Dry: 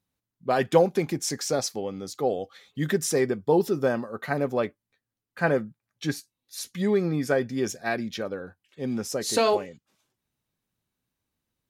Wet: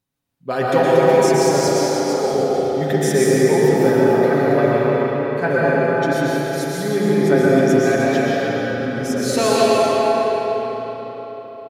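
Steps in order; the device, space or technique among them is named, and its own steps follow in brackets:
cave (single-tap delay 304 ms −10 dB; convolution reverb RT60 4.1 s, pre-delay 109 ms, DRR −6.5 dB)
comb filter 7.3 ms, depth 42%
0:01.68–0:02.34: high-pass filter 170 Hz 12 dB per octave
spring reverb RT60 3.5 s, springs 34 ms, chirp 70 ms, DRR 2 dB

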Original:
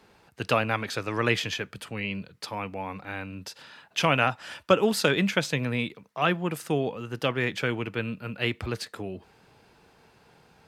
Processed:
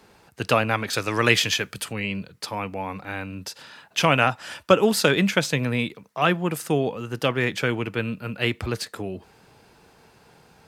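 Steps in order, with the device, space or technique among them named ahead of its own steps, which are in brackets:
0:00.93–0:01.93: high-shelf EQ 2,300 Hz +7.5 dB
exciter from parts (in parallel at −4.5 dB: high-pass filter 4,500 Hz 12 dB per octave + soft clipping −33.5 dBFS, distortion −8 dB)
on the sum: level +4 dB

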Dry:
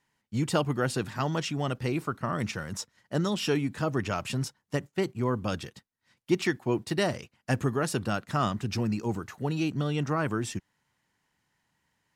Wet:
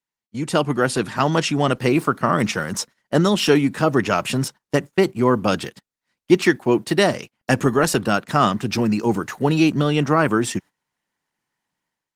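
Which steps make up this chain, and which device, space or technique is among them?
video call (high-pass filter 170 Hz 12 dB per octave; automatic gain control gain up to 14.5 dB; noise gate −35 dBFS, range −16 dB; Opus 24 kbit/s 48,000 Hz)

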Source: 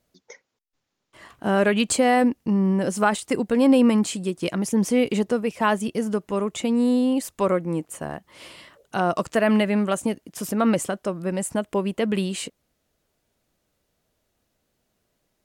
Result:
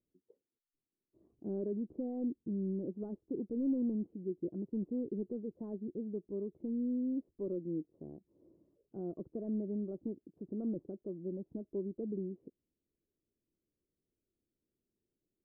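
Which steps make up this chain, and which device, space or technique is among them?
overdriven synthesiser ladder filter (soft clipping −15 dBFS, distortion −15 dB; transistor ladder low-pass 410 Hz, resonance 55%)
level −7 dB

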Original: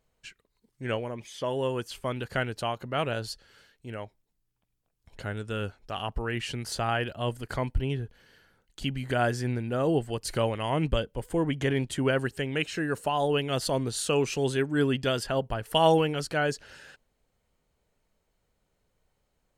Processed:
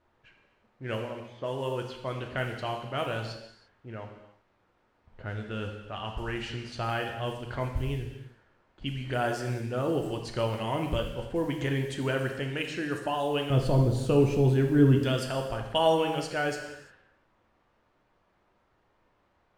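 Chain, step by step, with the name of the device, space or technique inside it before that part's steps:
0:13.50–0:14.99: spectral tilt −4 dB per octave
cassette deck with a dynamic noise filter (white noise bed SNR 28 dB; low-pass that shuts in the quiet parts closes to 1,100 Hz, open at −24 dBFS)
reverb whose tail is shaped and stops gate 370 ms falling, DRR 2.5 dB
level −4 dB

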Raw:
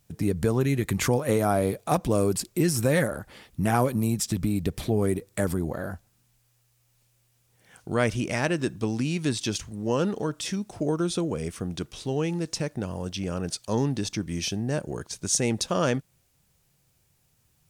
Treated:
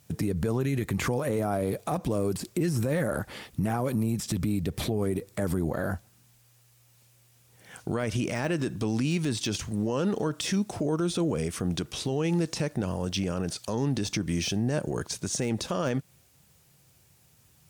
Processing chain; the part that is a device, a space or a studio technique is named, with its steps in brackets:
podcast mastering chain (high-pass filter 64 Hz 12 dB per octave; de-essing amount 75%; downward compressor 2.5 to 1, threshold −27 dBFS, peak gain reduction 6.5 dB; brickwall limiter −25.5 dBFS, peak gain reduction 9 dB; level +7 dB; MP3 112 kbit/s 44,100 Hz)

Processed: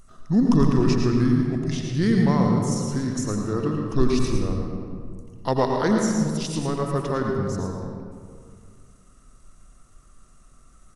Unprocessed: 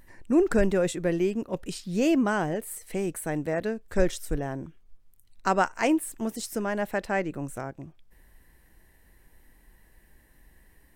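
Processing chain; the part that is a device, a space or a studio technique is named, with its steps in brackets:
high-shelf EQ 4,300 Hz +4 dB
monster voice (pitch shifter −6.5 semitones; low-shelf EQ 210 Hz +4 dB; single-tap delay 111 ms −8.5 dB; convolution reverb RT60 2.1 s, pre-delay 80 ms, DRR 2 dB)

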